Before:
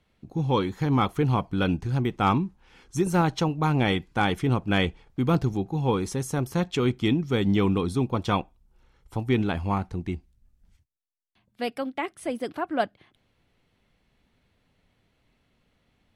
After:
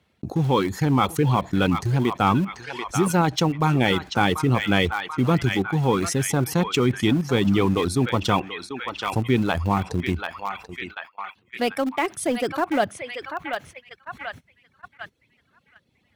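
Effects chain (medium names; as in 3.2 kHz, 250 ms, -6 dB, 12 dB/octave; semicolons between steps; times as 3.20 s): high-pass 67 Hz 24 dB/octave; on a send: band-passed feedback delay 737 ms, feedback 53%, band-pass 1.9 kHz, level -8 dB; on the sum: reverb removal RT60 0.83 s; gate -53 dBFS, range -36 dB; in parallel at -10.5 dB: small samples zeroed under -28.5 dBFS; on the sum: level flattener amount 50%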